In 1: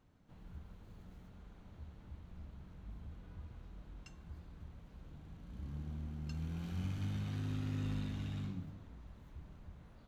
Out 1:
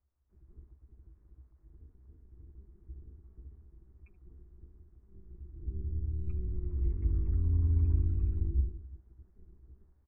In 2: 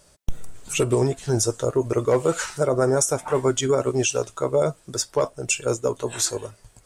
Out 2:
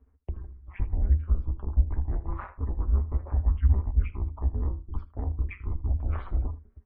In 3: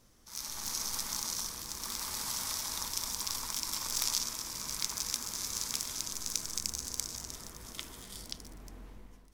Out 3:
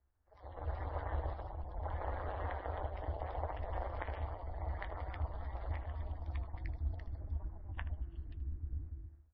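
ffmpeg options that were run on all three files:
-filter_complex "[0:a]bandreject=frequency=60:width_type=h:width=6,bandreject=frequency=120:width_type=h:width=6,bandreject=frequency=180:width_type=h:width=6,bandreject=frequency=240:width_type=h:width=6,bandreject=frequency=300:width_type=h:width=6,bandreject=frequency=360:width_type=h:width=6,bandreject=frequency=420:width_type=h:width=6,bandreject=frequency=480:width_type=h:width=6,afftdn=noise_reduction=23:noise_floor=-45,equalizer=frequency=62:width_type=o:width=2.8:gain=5.5,acontrast=26,highpass=frequency=200:width_type=q:width=0.5412,highpass=frequency=200:width_type=q:width=1.307,lowpass=frequency=2200:width_type=q:width=0.5176,lowpass=frequency=2200:width_type=q:width=0.7071,lowpass=frequency=2200:width_type=q:width=1.932,afreqshift=-340,areverse,acompressor=threshold=-33dB:ratio=6,areverse,alimiter=level_in=6.5dB:limit=-24dB:level=0:latency=1:release=251,volume=-6.5dB,tremolo=f=190:d=0.947,lowshelf=frequency=100:width_type=q:width=3:gain=12.5,asplit=2[link_01][link_02];[link_02]aecho=0:1:15|78:0.158|0.141[link_03];[link_01][link_03]amix=inputs=2:normalize=0,volume=6dB" -ar 24000 -c:a libmp3lame -b:a 24k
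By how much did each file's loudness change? +12.0, −7.0, −8.0 LU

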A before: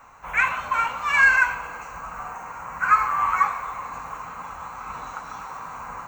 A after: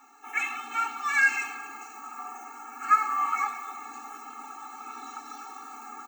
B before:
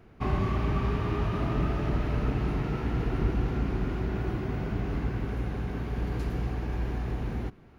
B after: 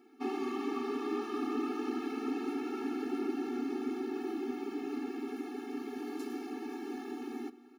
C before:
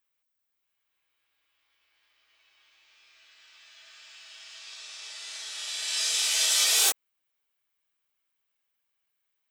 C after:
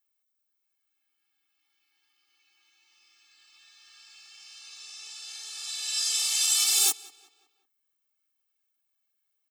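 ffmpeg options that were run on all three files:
-filter_complex "[0:a]bass=frequency=250:gain=12,treble=frequency=4000:gain=8,asplit=2[link_01][link_02];[link_02]adelay=184,lowpass=frequency=4000:poles=1,volume=-19.5dB,asplit=2[link_03][link_04];[link_04]adelay=184,lowpass=frequency=4000:poles=1,volume=0.48,asplit=2[link_05][link_06];[link_06]adelay=184,lowpass=frequency=4000:poles=1,volume=0.48,asplit=2[link_07][link_08];[link_08]adelay=184,lowpass=frequency=4000:poles=1,volume=0.48[link_09];[link_03][link_05][link_07][link_09]amix=inputs=4:normalize=0[link_10];[link_01][link_10]amix=inputs=2:normalize=0,afftfilt=real='re*eq(mod(floor(b*sr/1024/230),2),1)':imag='im*eq(mod(floor(b*sr/1024/230),2),1)':win_size=1024:overlap=0.75,volume=-3dB"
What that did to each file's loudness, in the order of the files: −6.0, −6.5, 0.0 LU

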